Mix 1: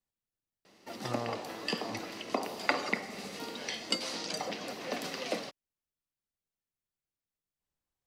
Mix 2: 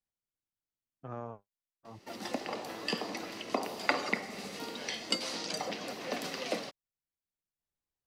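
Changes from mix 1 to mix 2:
speech -4.0 dB; background: entry +1.20 s

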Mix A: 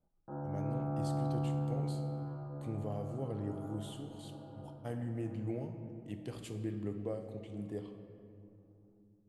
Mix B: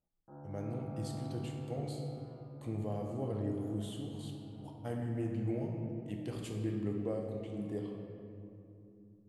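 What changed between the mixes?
speech: send +6.5 dB; background -9.5 dB

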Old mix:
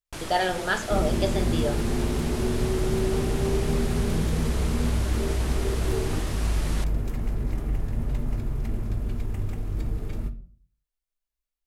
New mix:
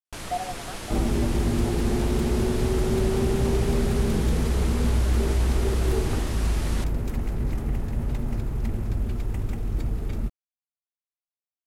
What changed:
speech: add vowel filter a; second sound +4.5 dB; reverb: off

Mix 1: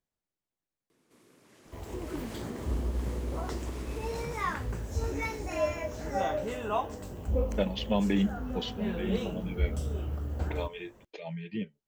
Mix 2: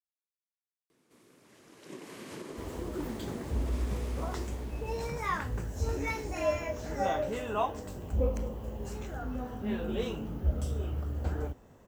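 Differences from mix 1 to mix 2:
speech: muted; second sound: entry +0.85 s

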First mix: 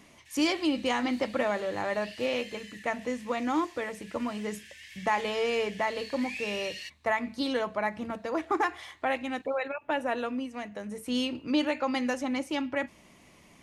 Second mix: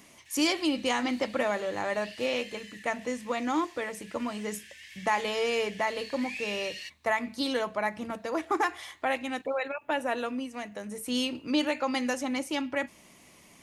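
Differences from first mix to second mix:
speech: add treble shelf 5.9 kHz +9.5 dB; master: add bass shelf 100 Hz -6 dB

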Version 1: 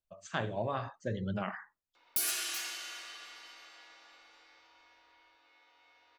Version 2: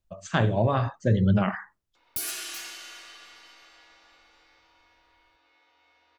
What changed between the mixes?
speech +8.0 dB; master: add bass shelf 240 Hz +10.5 dB

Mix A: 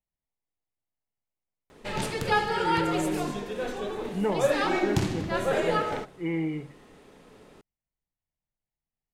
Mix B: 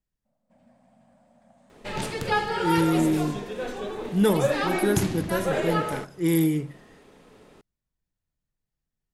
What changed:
speech: remove rippled Chebyshev low-pass 3 kHz, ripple 9 dB; first sound: unmuted

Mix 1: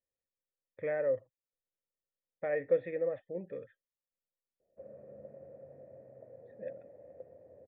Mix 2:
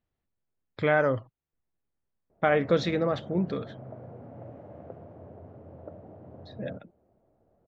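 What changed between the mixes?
background: entry -2.30 s; master: remove cascade formant filter e

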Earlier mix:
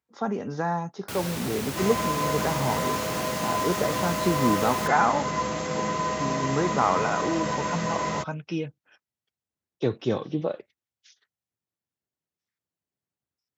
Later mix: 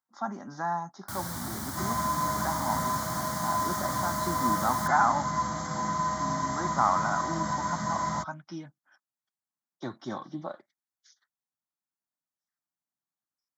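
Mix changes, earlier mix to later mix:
speech: add high-pass 260 Hz 12 dB/octave; master: add static phaser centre 1.1 kHz, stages 4

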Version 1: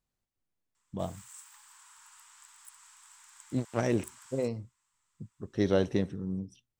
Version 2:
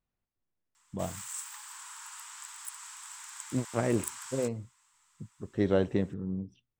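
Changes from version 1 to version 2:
speech: add low-pass 3 kHz 12 dB/octave; background +10.5 dB

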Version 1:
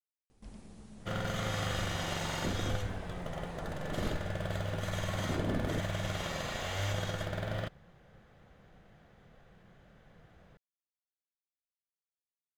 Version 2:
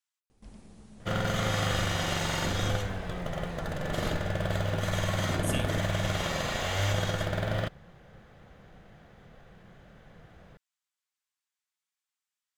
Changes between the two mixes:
speech: unmuted; second sound +6.0 dB

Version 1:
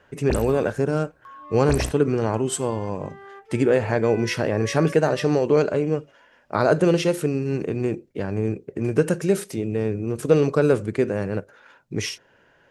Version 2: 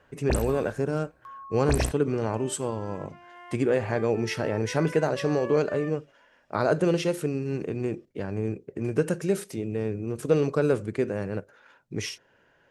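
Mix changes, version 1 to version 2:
speech -5.0 dB; second sound: entry +0.65 s

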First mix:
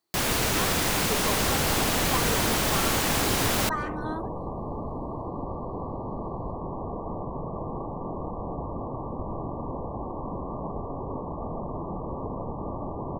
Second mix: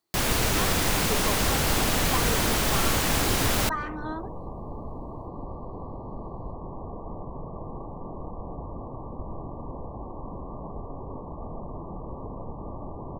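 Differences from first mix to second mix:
speech: add low-pass 5.1 kHz 12 dB/octave; second sound -5.5 dB; master: add bass shelf 67 Hz +8.5 dB

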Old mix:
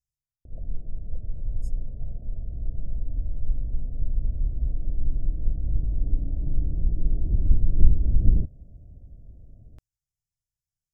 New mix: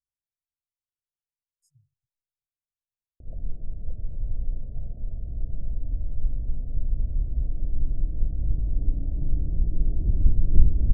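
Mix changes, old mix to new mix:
speech -11.5 dB; background: entry +2.75 s

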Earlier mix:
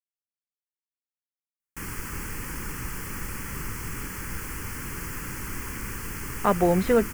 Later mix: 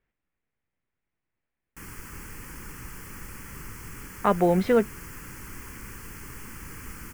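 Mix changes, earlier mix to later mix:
speech: entry -2.20 s; background -7.0 dB

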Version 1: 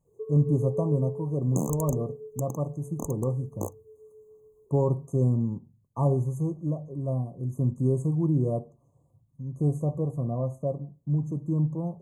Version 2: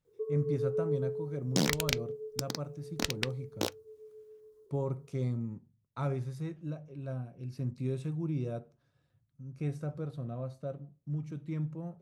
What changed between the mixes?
speech -9.5 dB; master: remove brick-wall FIR band-stop 1.2–6.2 kHz

